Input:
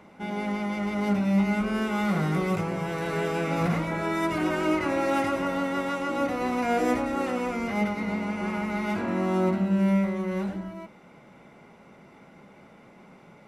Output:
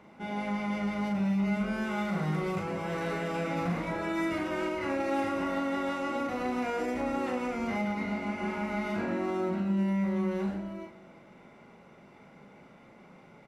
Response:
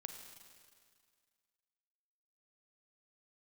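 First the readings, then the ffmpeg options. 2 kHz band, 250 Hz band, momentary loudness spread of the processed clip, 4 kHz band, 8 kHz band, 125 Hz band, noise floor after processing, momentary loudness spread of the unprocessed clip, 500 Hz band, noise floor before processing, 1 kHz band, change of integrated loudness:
−4.0 dB, −4.5 dB, 4 LU, −5.0 dB, −7.0 dB, −5.0 dB, −55 dBFS, 6 LU, −4.5 dB, −53 dBFS, −4.5 dB, −4.5 dB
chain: -filter_complex "[0:a]alimiter=limit=-20.5dB:level=0:latency=1:release=90,asplit=2[link_01][link_02];[link_02]adelay=40,volume=-4dB[link_03];[link_01][link_03]amix=inputs=2:normalize=0,asplit=2[link_04][link_05];[1:a]atrim=start_sample=2205,lowpass=8300[link_06];[link_05][link_06]afir=irnorm=-1:irlink=0,volume=-1dB[link_07];[link_04][link_07]amix=inputs=2:normalize=0,volume=-7.5dB"

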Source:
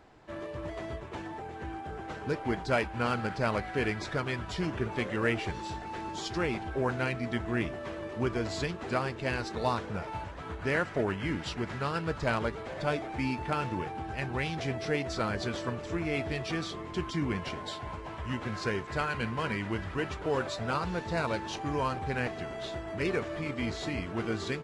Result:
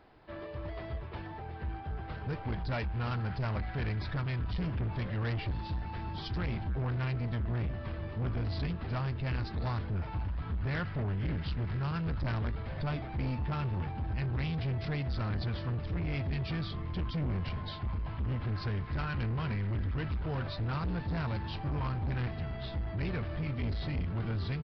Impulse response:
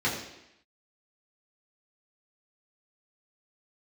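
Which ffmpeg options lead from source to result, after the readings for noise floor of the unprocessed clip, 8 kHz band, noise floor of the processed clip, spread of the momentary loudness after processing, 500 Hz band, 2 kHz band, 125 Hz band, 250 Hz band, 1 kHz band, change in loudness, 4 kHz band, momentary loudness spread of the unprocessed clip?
−42 dBFS, below −20 dB, −42 dBFS, 5 LU, −10.0 dB, −8.0 dB, +5.0 dB, −4.0 dB, −7.5 dB, −2.0 dB, −5.5 dB, 8 LU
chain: -af "asubboost=boost=9:cutoff=130,aresample=11025,asoftclip=type=tanh:threshold=-27dB,aresample=44100,volume=-2.5dB"

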